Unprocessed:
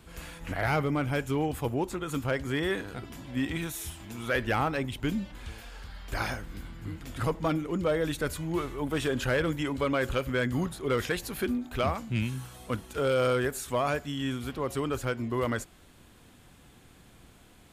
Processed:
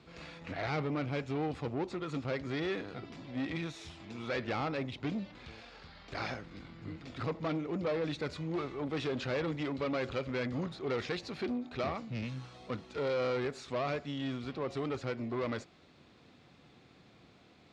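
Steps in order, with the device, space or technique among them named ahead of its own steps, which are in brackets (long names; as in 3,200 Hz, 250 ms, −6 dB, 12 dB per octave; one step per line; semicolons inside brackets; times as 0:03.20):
guitar amplifier (tube saturation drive 28 dB, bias 0.35; bass and treble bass −4 dB, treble +7 dB; loudspeaker in its box 98–4,200 Hz, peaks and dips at 150 Hz +3 dB, 940 Hz −4 dB, 1,600 Hz −6 dB, 3,100 Hz −7 dB)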